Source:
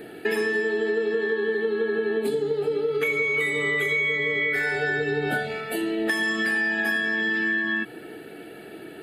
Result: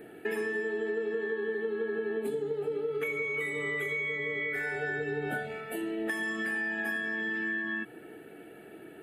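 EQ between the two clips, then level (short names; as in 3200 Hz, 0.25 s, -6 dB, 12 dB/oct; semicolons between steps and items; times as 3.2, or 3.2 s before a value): bell 4500 Hz -12 dB 0.76 oct; -7.5 dB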